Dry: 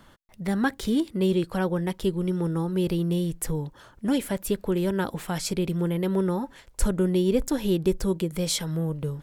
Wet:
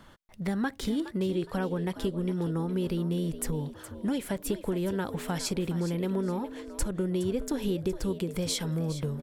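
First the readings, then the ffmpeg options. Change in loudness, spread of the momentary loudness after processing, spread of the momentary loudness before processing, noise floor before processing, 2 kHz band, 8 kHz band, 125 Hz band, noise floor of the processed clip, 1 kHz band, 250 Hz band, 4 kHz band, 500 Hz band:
−4.5 dB, 4 LU, 6 LU, −54 dBFS, −5.0 dB, −3.5 dB, −4.0 dB, −51 dBFS, −4.5 dB, −4.5 dB, −4.0 dB, −5.0 dB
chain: -filter_complex "[0:a]highshelf=frequency=9300:gain=-4.5,acompressor=threshold=-27dB:ratio=4,asplit=4[link_01][link_02][link_03][link_04];[link_02]adelay=416,afreqshift=72,volume=-13dB[link_05];[link_03]adelay=832,afreqshift=144,volume=-22.6dB[link_06];[link_04]adelay=1248,afreqshift=216,volume=-32.3dB[link_07];[link_01][link_05][link_06][link_07]amix=inputs=4:normalize=0"

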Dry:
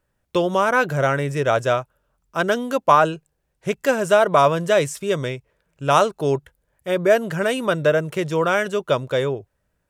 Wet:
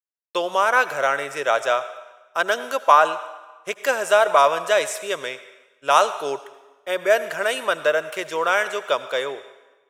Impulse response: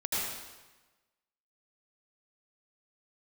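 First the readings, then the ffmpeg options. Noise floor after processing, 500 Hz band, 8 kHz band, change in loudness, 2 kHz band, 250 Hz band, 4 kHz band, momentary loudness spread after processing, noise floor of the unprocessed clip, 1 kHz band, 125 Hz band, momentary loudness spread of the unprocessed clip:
−62 dBFS, −2.5 dB, +2.0 dB, −1.0 dB, +2.0 dB, −13.0 dB, +2.0 dB, 15 LU, −73 dBFS, +1.0 dB, below −20 dB, 11 LU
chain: -filter_complex "[0:a]highpass=640,agate=range=-33dB:threshold=-42dB:ratio=3:detection=peak,asplit=2[link_01][link_02];[1:a]atrim=start_sample=2205,lowshelf=frequency=320:gain=-10.5[link_03];[link_02][link_03]afir=irnorm=-1:irlink=0,volume=-18.5dB[link_04];[link_01][link_04]amix=inputs=2:normalize=0,volume=1dB"

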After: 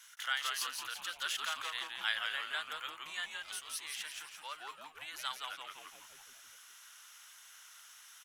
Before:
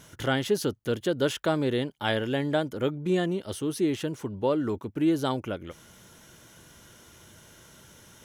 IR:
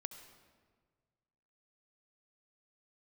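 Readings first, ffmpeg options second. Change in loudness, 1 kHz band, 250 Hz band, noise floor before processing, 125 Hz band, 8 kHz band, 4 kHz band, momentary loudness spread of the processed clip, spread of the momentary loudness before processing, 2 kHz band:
−10.5 dB, −7.5 dB, below −40 dB, −54 dBFS, below −40 dB, −1.0 dB, −1.0 dB, 18 LU, 6 LU, −2.0 dB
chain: -filter_complex "[0:a]highpass=frequency=1300:width=0.5412,highpass=frequency=1300:width=1.3066,asplit=2[link_01][link_02];[link_02]asplit=7[link_03][link_04][link_05][link_06][link_07][link_08][link_09];[link_03]adelay=170,afreqshift=-150,volume=-4.5dB[link_10];[link_04]adelay=340,afreqshift=-300,volume=-10.3dB[link_11];[link_05]adelay=510,afreqshift=-450,volume=-16.2dB[link_12];[link_06]adelay=680,afreqshift=-600,volume=-22dB[link_13];[link_07]adelay=850,afreqshift=-750,volume=-27.9dB[link_14];[link_08]adelay=1020,afreqshift=-900,volume=-33.7dB[link_15];[link_09]adelay=1190,afreqshift=-1050,volume=-39.6dB[link_16];[link_10][link_11][link_12][link_13][link_14][link_15][link_16]amix=inputs=7:normalize=0[link_17];[link_01][link_17]amix=inputs=2:normalize=0,volume=-2.5dB"

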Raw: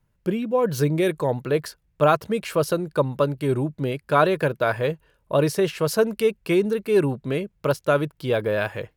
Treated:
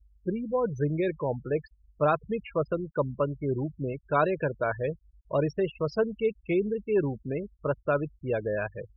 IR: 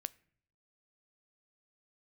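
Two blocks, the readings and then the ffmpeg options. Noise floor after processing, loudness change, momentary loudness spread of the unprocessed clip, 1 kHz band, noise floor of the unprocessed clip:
−65 dBFS, −6.5 dB, 6 LU, −6.5 dB, −68 dBFS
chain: -filter_complex "[0:a]asplit=2[link_01][link_02];[1:a]atrim=start_sample=2205,asetrate=61740,aresample=44100,lowpass=6600[link_03];[link_02][link_03]afir=irnorm=-1:irlink=0,volume=-3dB[link_04];[link_01][link_04]amix=inputs=2:normalize=0,aeval=exprs='val(0)+0.00891*(sin(2*PI*50*n/s)+sin(2*PI*2*50*n/s)/2+sin(2*PI*3*50*n/s)/3+sin(2*PI*4*50*n/s)/4+sin(2*PI*5*50*n/s)/5)':channel_layout=same,afftfilt=real='re*gte(hypot(re,im),0.0891)':imag='im*gte(hypot(re,im),0.0891)':win_size=1024:overlap=0.75,volume=-9dB"

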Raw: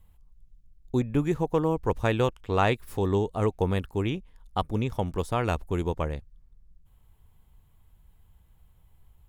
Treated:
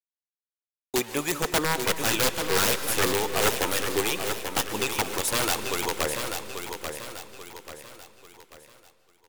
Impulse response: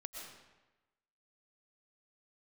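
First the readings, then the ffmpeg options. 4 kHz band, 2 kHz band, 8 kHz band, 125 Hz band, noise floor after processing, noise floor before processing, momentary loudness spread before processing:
+13.5 dB, +9.0 dB, +23.5 dB, −9.5 dB, below −85 dBFS, −60 dBFS, 6 LU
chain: -filter_complex "[0:a]lowpass=10000,aemphasis=mode=production:type=riaa,acrusher=bits=7:mix=0:aa=0.000001,highpass=frequency=400:poles=1,aphaser=in_gain=1:out_gain=1:delay=3.8:decay=0.39:speed=0.66:type=triangular,aeval=exprs='(mod(15*val(0)+1,2)-1)/15':channel_layout=same,aecho=1:1:838|1676|2514|3352|4190:0.447|0.188|0.0788|0.0331|0.0139,agate=range=-33dB:threshold=-59dB:ratio=3:detection=peak,asplit=2[link_01][link_02];[1:a]atrim=start_sample=2205,asetrate=36162,aresample=44100[link_03];[link_02][link_03]afir=irnorm=-1:irlink=0,volume=-3.5dB[link_04];[link_01][link_04]amix=inputs=2:normalize=0,volume=4dB"

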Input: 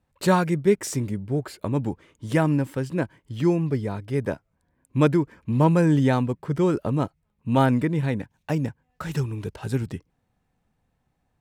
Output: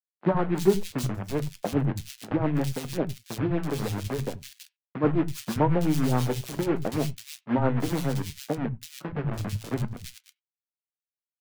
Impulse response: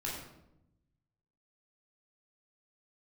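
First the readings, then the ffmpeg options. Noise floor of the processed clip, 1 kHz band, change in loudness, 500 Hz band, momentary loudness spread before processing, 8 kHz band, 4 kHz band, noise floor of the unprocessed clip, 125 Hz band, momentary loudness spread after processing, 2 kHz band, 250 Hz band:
below −85 dBFS, −4.0 dB, −4.0 dB, −3.5 dB, 12 LU, can't be measured, +0.5 dB, −73 dBFS, −4.5 dB, 11 LU, −5.5 dB, −4.0 dB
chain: -filter_complex "[0:a]afwtdn=0.0631,lowpass=6300,aemphasis=mode=reproduction:type=cd,asplit=2[link_01][link_02];[link_02]acompressor=threshold=-29dB:ratio=16,volume=2dB[link_03];[link_01][link_03]amix=inputs=2:normalize=0,aeval=exprs='0.562*(cos(1*acos(clip(val(0)/0.562,-1,1)))-cos(1*PI/2))+0.0631*(cos(2*acos(clip(val(0)/0.562,-1,1)))-cos(2*PI/2))+0.00708*(cos(3*acos(clip(val(0)/0.562,-1,1)))-cos(3*PI/2))+0.0631*(cos(4*acos(clip(val(0)/0.562,-1,1)))-cos(4*PI/2))':channel_layout=same,acrusher=bits=5:dc=4:mix=0:aa=0.000001,tremolo=f=7.3:d=0.77,flanger=delay=4.1:depth=6.5:regen=68:speed=0.7:shape=sinusoidal,acrossover=split=160|2500[link_04][link_05][link_06];[link_04]adelay=80[link_07];[link_06]adelay=330[link_08];[link_07][link_05][link_08]amix=inputs=3:normalize=0,asplit=2[link_09][link_10];[1:a]atrim=start_sample=2205,atrim=end_sample=4410,lowpass=2700[link_11];[link_10][link_11]afir=irnorm=-1:irlink=0,volume=-19dB[link_12];[link_09][link_12]amix=inputs=2:normalize=0,volume=2dB"

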